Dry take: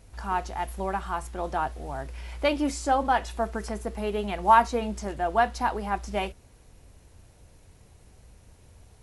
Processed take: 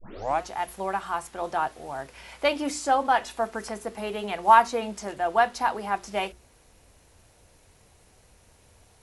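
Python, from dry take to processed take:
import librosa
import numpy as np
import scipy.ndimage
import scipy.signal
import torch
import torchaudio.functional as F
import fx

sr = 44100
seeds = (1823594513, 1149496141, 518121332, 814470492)

y = fx.tape_start_head(x, sr, length_s=0.41)
y = fx.low_shelf(y, sr, hz=270.0, db=-9.5)
y = fx.hum_notches(y, sr, base_hz=60, count=7)
y = y * 10.0 ** (2.5 / 20.0)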